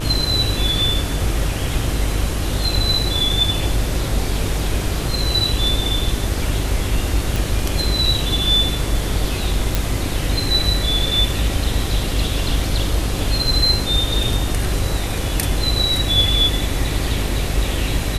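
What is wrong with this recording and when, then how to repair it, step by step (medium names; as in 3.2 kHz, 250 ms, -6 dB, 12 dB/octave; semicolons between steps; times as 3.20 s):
buzz 50 Hz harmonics 29 -24 dBFS
7.36 s: pop
9.75 s: pop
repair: de-click; de-hum 50 Hz, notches 29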